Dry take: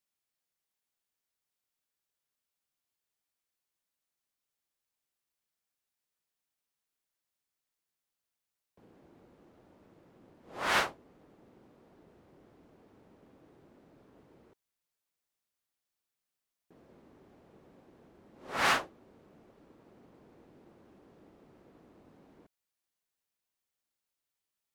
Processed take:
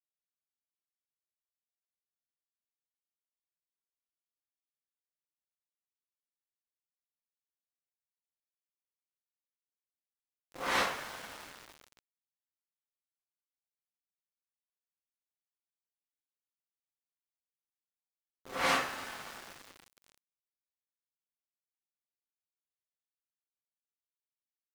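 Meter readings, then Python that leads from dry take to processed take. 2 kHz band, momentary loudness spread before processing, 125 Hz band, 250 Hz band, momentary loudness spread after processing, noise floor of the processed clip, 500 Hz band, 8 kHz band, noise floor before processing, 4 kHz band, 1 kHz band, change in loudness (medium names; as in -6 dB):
-2.0 dB, 19 LU, -2.5 dB, -0.5 dB, 19 LU, under -85 dBFS, 0.0 dB, 0.0 dB, under -85 dBFS, -1.0 dB, -1.5 dB, -3.0 dB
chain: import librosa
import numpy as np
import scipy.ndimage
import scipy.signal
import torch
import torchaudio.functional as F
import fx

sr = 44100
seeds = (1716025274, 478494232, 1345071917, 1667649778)

y = fx.rev_double_slope(x, sr, seeds[0], early_s=0.36, late_s=4.8, knee_db=-18, drr_db=-5.0)
y = np.where(np.abs(y) >= 10.0 ** (-37.0 / 20.0), y, 0.0)
y = F.gain(torch.from_numpy(y), -7.0).numpy()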